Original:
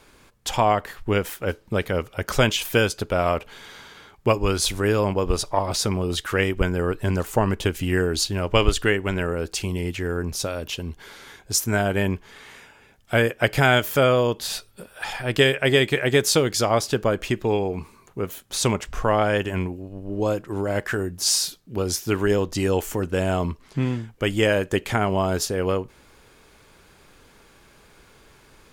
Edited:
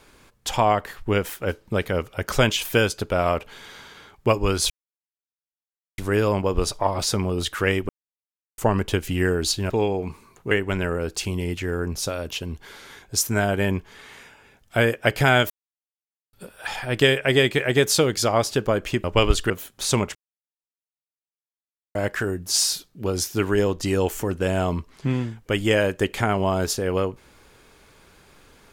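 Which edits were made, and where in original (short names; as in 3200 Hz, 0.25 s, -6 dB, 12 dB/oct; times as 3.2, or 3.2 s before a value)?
4.7 insert silence 1.28 s
6.61–7.3 mute
8.42–8.88 swap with 17.41–18.22
13.87–14.7 mute
18.87–20.67 mute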